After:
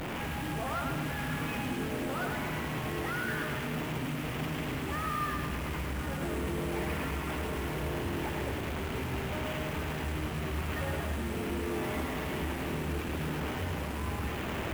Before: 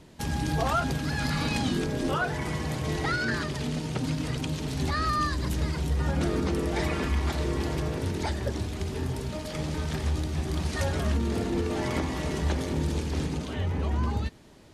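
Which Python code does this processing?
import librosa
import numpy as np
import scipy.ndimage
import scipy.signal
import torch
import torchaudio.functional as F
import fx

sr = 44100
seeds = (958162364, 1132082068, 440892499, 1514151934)

p1 = fx.delta_mod(x, sr, bps=16000, step_db=-28.0)
p2 = fx.low_shelf(p1, sr, hz=82.0, db=-7.0)
p3 = fx.over_compress(p2, sr, threshold_db=-33.0, ratio=-1.0)
p4 = p2 + (p3 * 10.0 ** (-1.5 / 20.0))
p5 = fx.quant_dither(p4, sr, seeds[0], bits=6, dither='none')
p6 = 10.0 ** (-22.5 / 20.0) * np.tanh(p5 / 10.0 ** (-22.5 / 20.0))
p7 = p6 + fx.echo_split(p6, sr, split_hz=450.0, low_ms=460, high_ms=107, feedback_pct=52, wet_db=-4.5, dry=0)
y = p7 * 10.0 ** (-7.5 / 20.0)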